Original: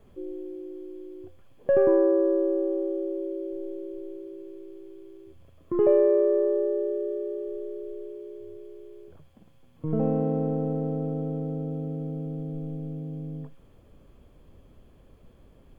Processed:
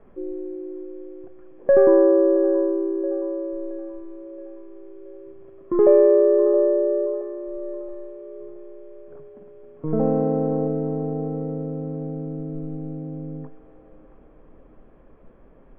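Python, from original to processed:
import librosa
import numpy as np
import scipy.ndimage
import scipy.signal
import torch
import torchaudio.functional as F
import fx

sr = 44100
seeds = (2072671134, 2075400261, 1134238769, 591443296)

p1 = scipy.signal.sosfilt(scipy.signal.butter(4, 2000.0, 'lowpass', fs=sr, output='sos'), x)
p2 = fx.peak_eq(p1, sr, hz=85.0, db=-14.0, octaves=1.4)
p3 = p2 + fx.echo_wet_bandpass(p2, sr, ms=673, feedback_pct=45, hz=760.0, wet_db=-10.5, dry=0)
y = F.gain(torch.from_numpy(p3), 6.5).numpy()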